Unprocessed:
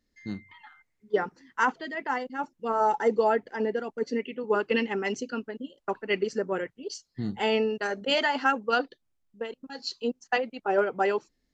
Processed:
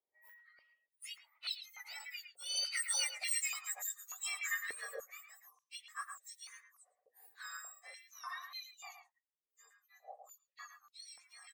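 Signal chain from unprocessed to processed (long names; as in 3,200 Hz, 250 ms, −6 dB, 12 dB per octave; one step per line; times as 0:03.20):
frequency axis turned over on the octave scale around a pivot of 1,900 Hz
source passing by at 0:03.41, 32 m/s, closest 12 metres
parametric band 1,900 Hz +6 dB 0.25 octaves
far-end echo of a speakerphone 110 ms, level −7 dB
high-pass on a step sequencer 3.4 Hz 440–3,900 Hz
level −2.5 dB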